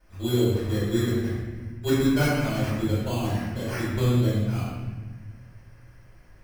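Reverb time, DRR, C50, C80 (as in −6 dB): 1.3 s, −12.5 dB, −2.0 dB, 0.5 dB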